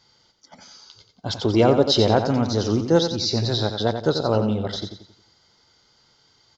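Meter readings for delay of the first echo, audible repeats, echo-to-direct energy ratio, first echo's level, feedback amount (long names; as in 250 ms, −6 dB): 89 ms, 4, −7.0 dB, −8.0 dB, 40%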